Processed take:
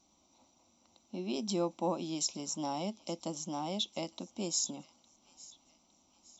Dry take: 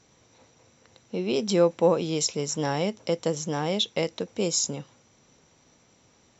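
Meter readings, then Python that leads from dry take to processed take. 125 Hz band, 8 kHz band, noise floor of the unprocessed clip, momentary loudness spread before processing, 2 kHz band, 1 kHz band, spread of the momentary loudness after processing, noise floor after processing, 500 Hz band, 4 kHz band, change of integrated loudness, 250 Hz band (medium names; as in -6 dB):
-12.5 dB, no reading, -62 dBFS, 8 LU, -15.5 dB, -6.5 dB, 15 LU, -70 dBFS, -14.0 dB, -8.0 dB, -10.0 dB, -8.0 dB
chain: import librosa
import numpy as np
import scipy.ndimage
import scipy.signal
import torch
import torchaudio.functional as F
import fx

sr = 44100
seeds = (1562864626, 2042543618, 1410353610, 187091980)

y = fx.fixed_phaser(x, sr, hz=460.0, stages=6)
y = fx.echo_wet_highpass(y, sr, ms=860, feedback_pct=45, hz=1400.0, wet_db=-20)
y = F.gain(torch.from_numpy(y), -6.0).numpy()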